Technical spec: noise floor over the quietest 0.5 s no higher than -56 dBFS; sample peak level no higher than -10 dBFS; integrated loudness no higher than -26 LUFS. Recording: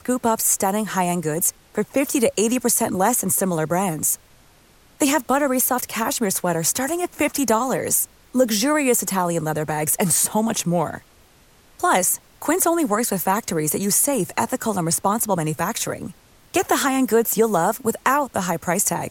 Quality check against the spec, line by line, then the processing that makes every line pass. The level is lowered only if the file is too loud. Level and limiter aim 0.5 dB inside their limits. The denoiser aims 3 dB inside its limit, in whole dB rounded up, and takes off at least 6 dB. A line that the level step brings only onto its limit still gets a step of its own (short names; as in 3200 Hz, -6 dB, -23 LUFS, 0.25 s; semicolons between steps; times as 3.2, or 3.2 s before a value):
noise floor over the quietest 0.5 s -53 dBFS: fail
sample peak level -6.0 dBFS: fail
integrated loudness -20.5 LUFS: fail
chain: gain -6 dB